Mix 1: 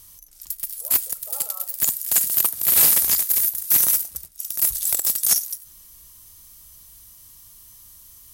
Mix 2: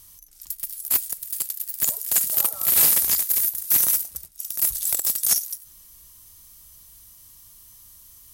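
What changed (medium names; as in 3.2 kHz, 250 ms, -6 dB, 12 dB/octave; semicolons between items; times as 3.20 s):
speech: entry +1.05 s; reverb: off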